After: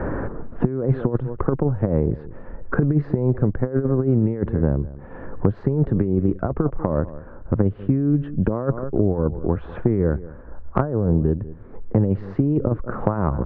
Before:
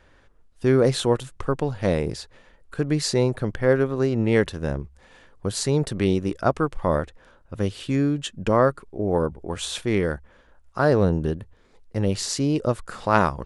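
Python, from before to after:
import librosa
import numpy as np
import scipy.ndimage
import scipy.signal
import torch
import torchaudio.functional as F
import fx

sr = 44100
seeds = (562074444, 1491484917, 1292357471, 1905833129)

y = scipy.signal.sosfilt(scipy.signal.butter(4, 1500.0, 'lowpass', fs=sr, output='sos'), x)
y = fx.peak_eq(y, sr, hz=350.0, db=4.0, octaves=1.8)
y = y + 10.0 ** (-23.0 / 20.0) * np.pad(y, (int(192 * sr / 1000.0), 0))[:len(y)]
y = fx.over_compress(y, sr, threshold_db=-20.0, ratio=-0.5)
y = fx.low_shelf(y, sr, hz=270.0, db=11.5)
y = fx.band_squash(y, sr, depth_pct=100)
y = F.gain(torch.from_numpy(y), -4.5).numpy()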